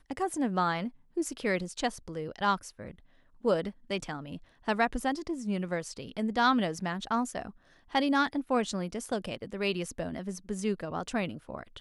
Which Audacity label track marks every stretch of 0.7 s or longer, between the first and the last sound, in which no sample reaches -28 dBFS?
2.550000	3.450000	silence